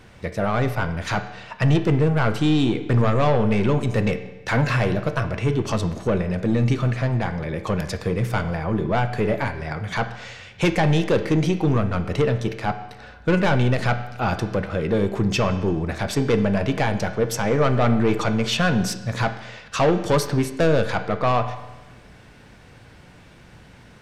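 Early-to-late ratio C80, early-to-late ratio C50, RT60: 13.0 dB, 11.0 dB, 1.1 s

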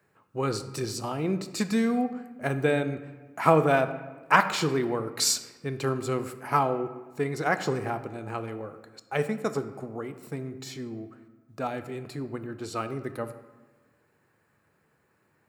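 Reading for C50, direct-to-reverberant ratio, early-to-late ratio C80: 12.0 dB, 10.0 dB, 13.5 dB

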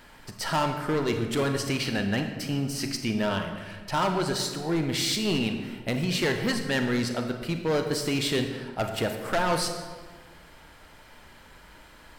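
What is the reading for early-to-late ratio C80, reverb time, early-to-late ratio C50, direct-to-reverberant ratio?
8.0 dB, 1.5 s, 6.5 dB, 5.0 dB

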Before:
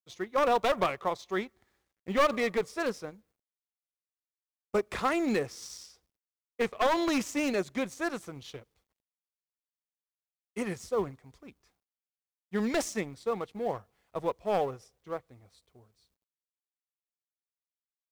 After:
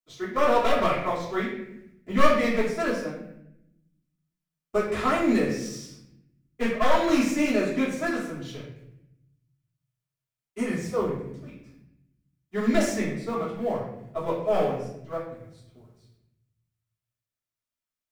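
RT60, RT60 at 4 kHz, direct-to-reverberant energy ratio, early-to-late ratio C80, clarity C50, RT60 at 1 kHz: 0.80 s, 0.60 s, −10.5 dB, 6.5 dB, 3.0 dB, 0.70 s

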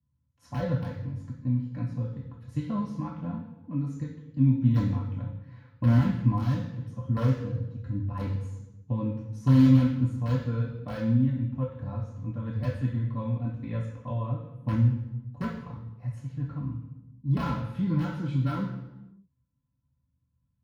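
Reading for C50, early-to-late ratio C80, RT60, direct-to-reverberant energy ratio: 6.0 dB, 9.0 dB, 0.95 s, −8.0 dB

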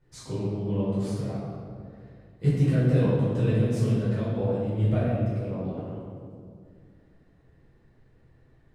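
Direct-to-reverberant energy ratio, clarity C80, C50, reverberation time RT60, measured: −11.0 dB, 0.0 dB, −2.0 dB, 2.2 s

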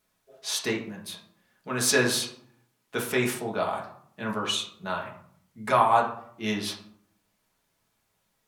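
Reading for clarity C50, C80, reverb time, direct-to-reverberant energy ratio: 8.0 dB, 12.0 dB, 0.65 s, −2.0 dB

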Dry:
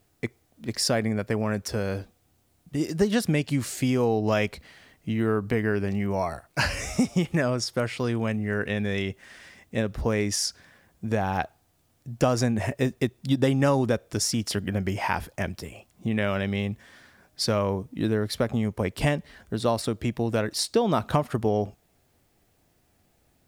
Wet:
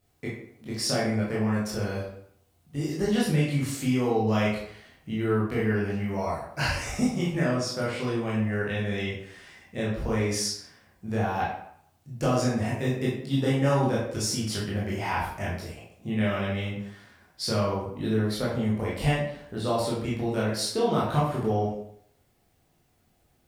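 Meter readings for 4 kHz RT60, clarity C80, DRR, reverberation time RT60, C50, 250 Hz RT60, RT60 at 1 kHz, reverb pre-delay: 0.50 s, 6.0 dB, −7.0 dB, 0.65 s, 2.0 dB, 0.65 s, 0.70 s, 16 ms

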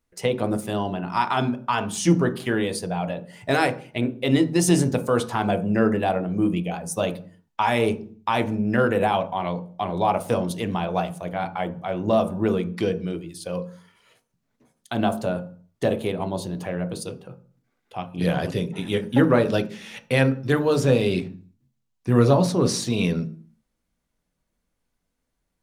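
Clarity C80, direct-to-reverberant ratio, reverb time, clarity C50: 20.0 dB, 8.0 dB, 0.45 s, 16.0 dB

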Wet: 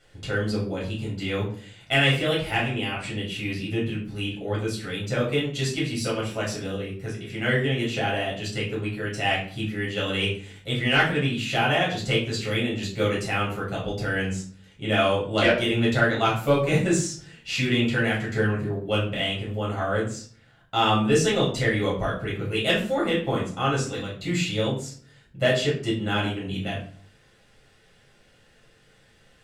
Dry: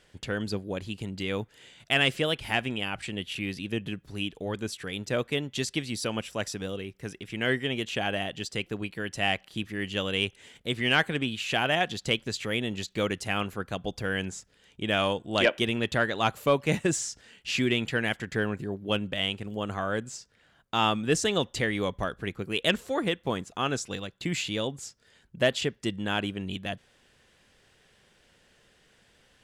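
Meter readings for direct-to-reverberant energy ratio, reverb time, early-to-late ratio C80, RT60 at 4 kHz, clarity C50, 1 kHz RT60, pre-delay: −6.0 dB, 0.45 s, 10.5 dB, 0.35 s, 6.5 dB, 0.45 s, 7 ms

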